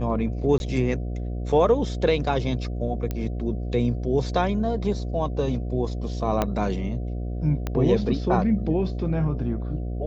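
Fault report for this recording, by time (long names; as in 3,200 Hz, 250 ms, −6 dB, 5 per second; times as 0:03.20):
mains buzz 60 Hz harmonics 12 −29 dBFS
0:00.58–0:00.60: drop-out 21 ms
0:03.11: click −15 dBFS
0:06.42: click −9 dBFS
0:07.67: click −14 dBFS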